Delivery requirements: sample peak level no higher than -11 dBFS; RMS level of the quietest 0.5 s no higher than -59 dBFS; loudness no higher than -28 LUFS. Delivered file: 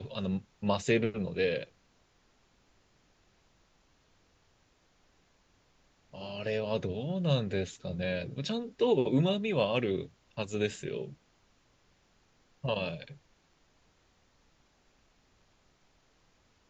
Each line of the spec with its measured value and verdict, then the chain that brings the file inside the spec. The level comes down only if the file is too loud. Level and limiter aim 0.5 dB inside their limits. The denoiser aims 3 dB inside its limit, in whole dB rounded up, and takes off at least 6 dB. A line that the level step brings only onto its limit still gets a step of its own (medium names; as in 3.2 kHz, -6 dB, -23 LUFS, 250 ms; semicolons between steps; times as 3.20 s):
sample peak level -14.5 dBFS: pass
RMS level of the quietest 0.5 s -68 dBFS: pass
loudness -32.5 LUFS: pass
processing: none needed